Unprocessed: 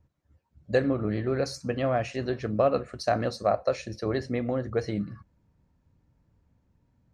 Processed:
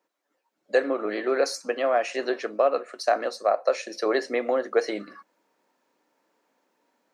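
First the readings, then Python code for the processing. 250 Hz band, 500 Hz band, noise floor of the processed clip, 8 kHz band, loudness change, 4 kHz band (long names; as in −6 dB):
−3.5 dB, +3.5 dB, −78 dBFS, +6.0 dB, +2.5 dB, +4.5 dB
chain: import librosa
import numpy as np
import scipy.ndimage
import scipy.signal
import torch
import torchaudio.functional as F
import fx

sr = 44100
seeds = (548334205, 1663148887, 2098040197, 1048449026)

y = scipy.signal.sosfilt(scipy.signal.bessel(6, 510.0, 'highpass', norm='mag', fs=sr, output='sos'), x)
y = fx.dynamic_eq(y, sr, hz=3800.0, q=0.92, threshold_db=-46.0, ratio=4.0, max_db=-4)
y = fx.rider(y, sr, range_db=10, speed_s=0.5)
y = F.gain(torch.from_numpy(y), 6.5).numpy()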